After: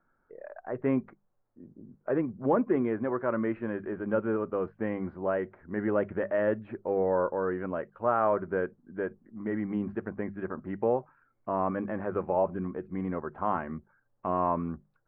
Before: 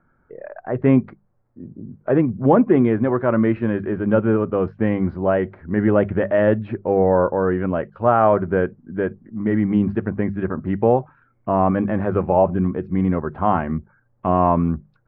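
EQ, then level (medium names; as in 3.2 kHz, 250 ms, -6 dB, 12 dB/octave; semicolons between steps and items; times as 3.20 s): low-pass 2.1 kHz 12 dB/octave; peaking EQ 90 Hz -11.5 dB 2.9 oct; dynamic bell 740 Hz, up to -5 dB, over -33 dBFS, Q 3.8; -7.0 dB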